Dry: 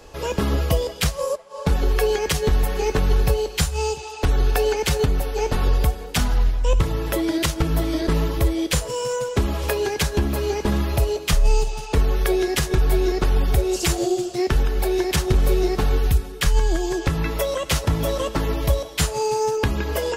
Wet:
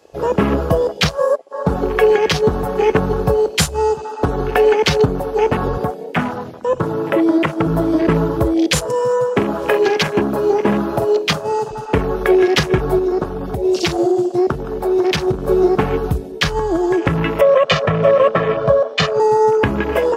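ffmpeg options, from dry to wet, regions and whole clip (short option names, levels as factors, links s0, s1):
-filter_complex "[0:a]asettb=1/sr,asplit=3[s0][s1][s2];[s0]atrim=end=5.774[s3];[s1]atrim=start=5.77:end=7.66,asetpts=PTS-STARTPTS,afade=t=in:d=0.004:c=qsin,afade=t=out:st=1.886:d=0.004:c=qsin,highpass=150,acrossover=split=2600[s4][s5];[s5]acompressor=threshold=0.0178:ratio=4:attack=1:release=60[s6];[s4][s6]amix=inputs=2:normalize=0[s7];[s2]atrim=start=7.656[s8];[s3][s7]acrossfade=d=0.004:c1=hsin:c2=qsin[s9];[s9][s8]acrossfade=d=0.004:c1=qsin:c2=hsin,asettb=1/sr,asplit=3[s10][s11][s12];[s10]atrim=end=9.364[s13];[s11]atrim=start=9.36:end=11.71,asetpts=PTS-STARTPTS,afade=t=in:d=0.004:c=qsin,afade=t=out:st=2.346:d=0.004:c=qsin,highpass=160,asplit=2[s14][s15];[s15]adelay=45,volume=0.316[s16];[s14][s16]amix=inputs=2:normalize=0,atrim=end_sample=103635[s17];[s12]atrim=start=11.706[s18];[s13][s17]acrossfade=d=0.004:c1=hsin:c2=qsin[s19];[s19][s18]acrossfade=d=0.004:c1=qsin:c2=hsin,asettb=1/sr,asplit=3[s20][s21][s22];[s20]atrim=end=12.984[s23];[s21]atrim=start=12.98:end=15.48,asetpts=PTS-STARTPTS,afade=t=in:d=0.004:c=qsin,afade=t=out:st=2.496:d=0.004:c=qsin,acompressor=threshold=0.112:ratio=10:attack=3.2:release=140:knee=1:detection=peak,aecho=1:1:145:0.0891,atrim=end_sample=110250[s24];[s22]atrim=start=15.476[s25];[s23][s24]acrossfade=d=0.004:c1=hsin:c2=qsin[s26];[s26][s25]acrossfade=d=0.004:c1=qsin:c2=hsin,asettb=1/sr,asplit=3[s27][s28][s29];[s27]atrim=end=17.414[s30];[s28]atrim=start=17.41:end=19.2,asetpts=PTS-STARTPTS,afade=t=in:d=0.004:c=qsin,afade=t=out:st=1.786:d=0.004:c=qsin,highpass=160,lowpass=3600,aecho=1:1:1.7:0.9,atrim=end_sample=78939[s31];[s29]atrim=start=19.196[s32];[s30][s31]acrossfade=d=0.004:c1=hsin:c2=qsin[s33];[s33][s32]acrossfade=d=0.004:c1=qsin:c2=hsin,highpass=130,afwtdn=0.0251,alimiter=level_in=3.16:limit=0.891:release=50:level=0:latency=1,volume=0.891"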